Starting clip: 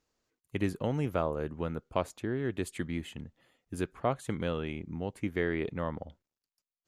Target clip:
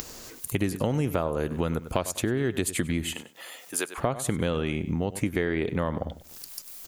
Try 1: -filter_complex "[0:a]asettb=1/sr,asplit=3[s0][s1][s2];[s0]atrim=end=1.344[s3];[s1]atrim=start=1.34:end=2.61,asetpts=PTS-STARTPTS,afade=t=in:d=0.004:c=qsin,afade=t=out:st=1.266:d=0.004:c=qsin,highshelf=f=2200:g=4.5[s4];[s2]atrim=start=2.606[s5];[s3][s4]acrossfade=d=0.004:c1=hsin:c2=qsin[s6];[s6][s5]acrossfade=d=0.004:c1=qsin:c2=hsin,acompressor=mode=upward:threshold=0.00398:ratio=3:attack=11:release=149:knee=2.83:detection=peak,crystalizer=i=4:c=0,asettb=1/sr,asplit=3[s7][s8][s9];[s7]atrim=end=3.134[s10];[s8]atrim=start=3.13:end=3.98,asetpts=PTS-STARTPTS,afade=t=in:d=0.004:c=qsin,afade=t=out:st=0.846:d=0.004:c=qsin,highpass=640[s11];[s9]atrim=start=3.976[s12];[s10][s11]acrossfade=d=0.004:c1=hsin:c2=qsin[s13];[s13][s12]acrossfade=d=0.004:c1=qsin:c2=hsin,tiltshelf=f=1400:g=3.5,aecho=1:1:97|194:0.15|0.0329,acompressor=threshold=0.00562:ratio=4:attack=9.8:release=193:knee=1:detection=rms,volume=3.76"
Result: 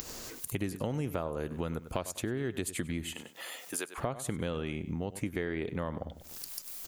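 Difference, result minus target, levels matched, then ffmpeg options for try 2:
compression: peak gain reduction +7.5 dB
-filter_complex "[0:a]asettb=1/sr,asplit=3[s0][s1][s2];[s0]atrim=end=1.344[s3];[s1]atrim=start=1.34:end=2.61,asetpts=PTS-STARTPTS,afade=t=in:d=0.004:c=qsin,afade=t=out:st=1.266:d=0.004:c=qsin,highshelf=f=2200:g=4.5[s4];[s2]atrim=start=2.606[s5];[s3][s4]acrossfade=d=0.004:c1=hsin:c2=qsin[s6];[s6][s5]acrossfade=d=0.004:c1=qsin:c2=hsin,acompressor=mode=upward:threshold=0.00398:ratio=3:attack=11:release=149:knee=2.83:detection=peak,crystalizer=i=4:c=0,asettb=1/sr,asplit=3[s7][s8][s9];[s7]atrim=end=3.134[s10];[s8]atrim=start=3.13:end=3.98,asetpts=PTS-STARTPTS,afade=t=in:d=0.004:c=qsin,afade=t=out:st=0.846:d=0.004:c=qsin,highpass=640[s11];[s9]atrim=start=3.976[s12];[s10][s11]acrossfade=d=0.004:c1=hsin:c2=qsin[s13];[s13][s12]acrossfade=d=0.004:c1=qsin:c2=hsin,tiltshelf=f=1400:g=3.5,aecho=1:1:97|194:0.15|0.0329,acompressor=threshold=0.0178:ratio=4:attack=9.8:release=193:knee=1:detection=rms,volume=3.76"

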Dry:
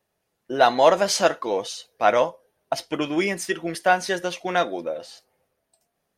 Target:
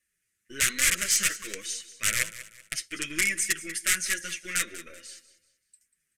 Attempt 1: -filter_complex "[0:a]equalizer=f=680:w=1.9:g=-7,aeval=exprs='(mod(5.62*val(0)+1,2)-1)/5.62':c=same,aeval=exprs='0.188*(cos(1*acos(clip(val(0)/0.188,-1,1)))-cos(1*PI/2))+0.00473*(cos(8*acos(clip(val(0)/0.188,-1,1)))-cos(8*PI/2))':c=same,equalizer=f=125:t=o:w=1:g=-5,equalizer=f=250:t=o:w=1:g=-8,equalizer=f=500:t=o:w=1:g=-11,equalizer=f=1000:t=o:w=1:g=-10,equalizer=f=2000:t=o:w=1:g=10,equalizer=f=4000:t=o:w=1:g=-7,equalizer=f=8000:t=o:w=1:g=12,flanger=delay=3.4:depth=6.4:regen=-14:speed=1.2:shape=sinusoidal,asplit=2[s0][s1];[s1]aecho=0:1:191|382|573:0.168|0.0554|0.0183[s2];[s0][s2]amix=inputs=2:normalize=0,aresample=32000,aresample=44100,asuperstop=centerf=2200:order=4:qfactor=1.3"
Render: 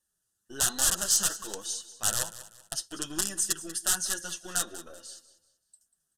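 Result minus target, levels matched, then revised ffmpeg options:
2 kHz band -9.0 dB
-filter_complex "[0:a]equalizer=f=680:w=1.9:g=-7,aeval=exprs='(mod(5.62*val(0)+1,2)-1)/5.62':c=same,aeval=exprs='0.188*(cos(1*acos(clip(val(0)/0.188,-1,1)))-cos(1*PI/2))+0.00473*(cos(8*acos(clip(val(0)/0.188,-1,1)))-cos(8*PI/2))':c=same,equalizer=f=125:t=o:w=1:g=-5,equalizer=f=250:t=o:w=1:g=-8,equalizer=f=500:t=o:w=1:g=-11,equalizer=f=1000:t=o:w=1:g=-10,equalizer=f=2000:t=o:w=1:g=10,equalizer=f=4000:t=o:w=1:g=-7,equalizer=f=8000:t=o:w=1:g=12,flanger=delay=3.4:depth=6.4:regen=-14:speed=1.2:shape=sinusoidal,asplit=2[s0][s1];[s1]aecho=0:1:191|382|573:0.168|0.0554|0.0183[s2];[s0][s2]amix=inputs=2:normalize=0,aresample=32000,aresample=44100,asuperstop=centerf=820:order=4:qfactor=1.3"

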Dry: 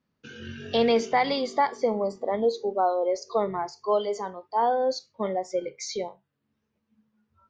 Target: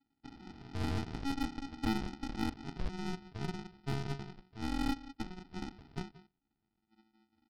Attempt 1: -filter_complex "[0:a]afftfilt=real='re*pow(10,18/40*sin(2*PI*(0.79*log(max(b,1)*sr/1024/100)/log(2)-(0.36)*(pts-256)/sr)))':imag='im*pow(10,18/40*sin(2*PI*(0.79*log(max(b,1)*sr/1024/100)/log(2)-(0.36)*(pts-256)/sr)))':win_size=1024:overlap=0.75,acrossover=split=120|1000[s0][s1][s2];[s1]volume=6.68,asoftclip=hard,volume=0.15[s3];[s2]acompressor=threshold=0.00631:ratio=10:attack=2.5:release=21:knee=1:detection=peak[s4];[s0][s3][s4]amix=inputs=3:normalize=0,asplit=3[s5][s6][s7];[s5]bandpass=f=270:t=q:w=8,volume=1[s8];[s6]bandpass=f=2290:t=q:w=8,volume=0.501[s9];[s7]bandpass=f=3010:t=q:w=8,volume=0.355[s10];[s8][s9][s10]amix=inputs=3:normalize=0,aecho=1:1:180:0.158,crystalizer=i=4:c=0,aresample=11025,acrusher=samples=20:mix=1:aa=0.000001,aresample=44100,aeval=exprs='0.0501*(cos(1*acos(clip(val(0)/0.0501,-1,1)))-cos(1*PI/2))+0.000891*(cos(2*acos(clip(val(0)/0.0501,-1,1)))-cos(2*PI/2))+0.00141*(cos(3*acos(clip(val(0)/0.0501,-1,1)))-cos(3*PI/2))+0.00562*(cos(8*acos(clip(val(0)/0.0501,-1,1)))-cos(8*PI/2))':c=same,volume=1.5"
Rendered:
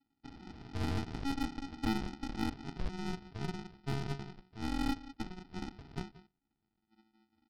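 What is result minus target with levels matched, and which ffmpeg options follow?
compression: peak gain reduction -6.5 dB
-filter_complex "[0:a]afftfilt=real='re*pow(10,18/40*sin(2*PI*(0.79*log(max(b,1)*sr/1024/100)/log(2)-(0.36)*(pts-256)/sr)))':imag='im*pow(10,18/40*sin(2*PI*(0.79*log(max(b,1)*sr/1024/100)/log(2)-(0.36)*(pts-256)/sr)))':win_size=1024:overlap=0.75,acrossover=split=120|1000[s0][s1][s2];[s1]volume=6.68,asoftclip=hard,volume=0.15[s3];[s2]acompressor=threshold=0.00282:ratio=10:attack=2.5:release=21:knee=1:detection=peak[s4];[s0][s3][s4]amix=inputs=3:normalize=0,asplit=3[s5][s6][s7];[s5]bandpass=f=270:t=q:w=8,volume=1[s8];[s6]bandpass=f=2290:t=q:w=8,volume=0.501[s9];[s7]bandpass=f=3010:t=q:w=8,volume=0.355[s10];[s8][s9][s10]amix=inputs=3:normalize=0,aecho=1:1:180:0.158,crystalizer=i=4:c=0,aresample=11025,acrusher=samples=20:mix=1:aa=0.000001,aresample=44100,aeval=exprs='0.0501*(cos(1*acos(clip(val(0)/0.0501,-1,1)))-cos(1*PI/2))+0.000891*(cos(2*acos(clip(val(0)/0.0501,-1,1)))-cos(2*PI/2))+0.00141*(cos(3*acos(clip(val(0)/0.0501,-1,1)))-cos(3*PI/2))+0.00562*(cos(8*acos(clip(val(0)/0.0501,-1,1)))-cos(8*PI/2))':c=same,volume=1.5"

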